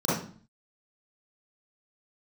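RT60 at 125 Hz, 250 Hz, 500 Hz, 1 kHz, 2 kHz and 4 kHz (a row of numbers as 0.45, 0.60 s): 0.60, 0.60, 0.45, 0.45, 0.40, 0.40 s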